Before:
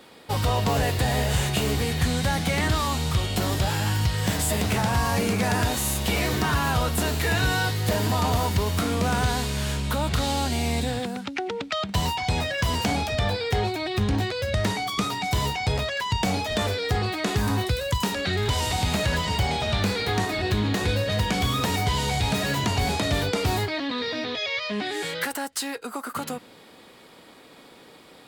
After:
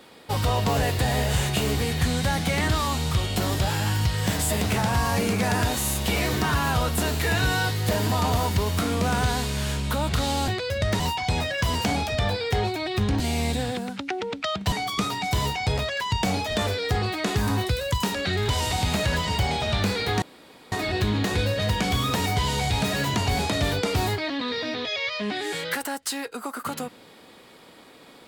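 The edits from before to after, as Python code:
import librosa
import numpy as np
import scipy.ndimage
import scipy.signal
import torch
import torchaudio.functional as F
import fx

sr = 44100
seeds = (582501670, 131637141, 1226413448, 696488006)

y = fx.edit(x, sr, fx.swap(start_s=10.48, length_s=1.52, other_s=14.2, other_length_s=0.52),
    fx.insert_room_tone(at_s=20.22, length_s=0.5), tone=tone)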